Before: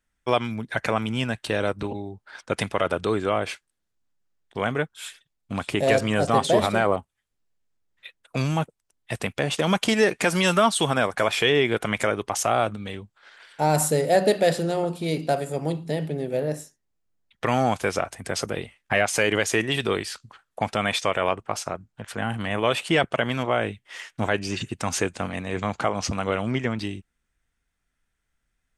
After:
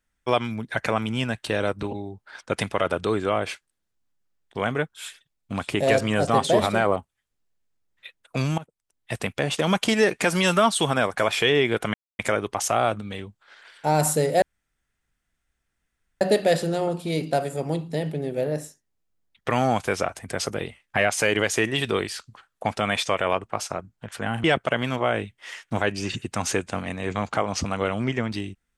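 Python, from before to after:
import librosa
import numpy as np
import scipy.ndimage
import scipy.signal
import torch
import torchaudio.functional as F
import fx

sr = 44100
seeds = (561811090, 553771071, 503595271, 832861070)

y = fx.edit(x, sr, fx.fade_in_from(start_s=8.58, length_s=0.54, floor_db=-18.5),
    fx.insert_silence(at_s=11.94, length_s=0.25),
    fx.insert_room_tone(at_s=14.17, length_s=1.79),
    fx.cut(start_s=22.4, length_s=0.51), tone=tone)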